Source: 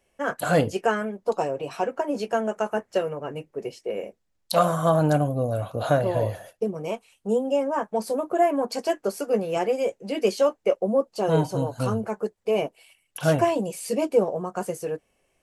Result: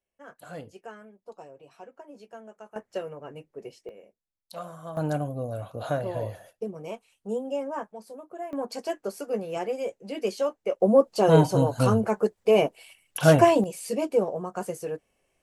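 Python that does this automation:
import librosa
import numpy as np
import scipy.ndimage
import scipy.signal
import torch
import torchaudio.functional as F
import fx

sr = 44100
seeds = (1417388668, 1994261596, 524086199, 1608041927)

y = fx.gain(x, sr, db=fx.steps((0.0, -20.0), (2.76, -8.5), (3.89, -18.5), (4.97, -7.0), (7.92, -16.5), (8.53, -6.0), (10.8, 4.0), (13.64, -3.0)))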